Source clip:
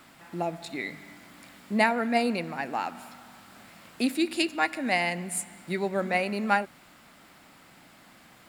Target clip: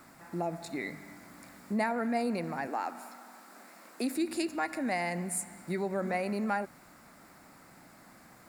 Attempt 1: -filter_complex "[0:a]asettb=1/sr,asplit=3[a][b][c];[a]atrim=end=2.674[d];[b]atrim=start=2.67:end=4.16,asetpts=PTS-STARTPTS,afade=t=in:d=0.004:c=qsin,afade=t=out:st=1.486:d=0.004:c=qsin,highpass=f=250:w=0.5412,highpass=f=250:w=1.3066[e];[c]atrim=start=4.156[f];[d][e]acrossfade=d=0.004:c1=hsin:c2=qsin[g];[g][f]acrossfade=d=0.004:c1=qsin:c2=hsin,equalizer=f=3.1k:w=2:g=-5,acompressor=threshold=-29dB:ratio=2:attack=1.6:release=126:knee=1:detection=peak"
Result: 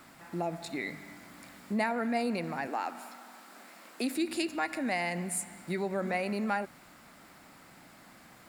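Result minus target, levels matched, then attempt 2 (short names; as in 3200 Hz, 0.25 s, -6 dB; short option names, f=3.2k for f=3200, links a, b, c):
4000 Hz band +3.5 dB
-filter_complex "[0:a]asettb=1/sr,asplit=3[a][b][c];[a]atrim=end=2.674[d];[b]atrim=start=2.67:end=4.16,asetpts=PTS-STARTPTS,afade=t=in:d=0.004:c=qsin,afade=t=out:st=1.486:d=0.004:c=qsin,highpass=f=250:w=0.5412,highpass=f=250:w=1.3066[e];[c]atrim=start=4.156[f];[d][e]acrossfade=d=0.004:c1=hsin:c2=qsin[g];[g][f]acrossfade=d=0.004:c1=qsin:c2=hsin,equalizer=f=3.1k:w=2:g=-13.5,acompressor=threshold=-29dB:ratio=2:attack=1.6:release=126:knee=1:detection=peak"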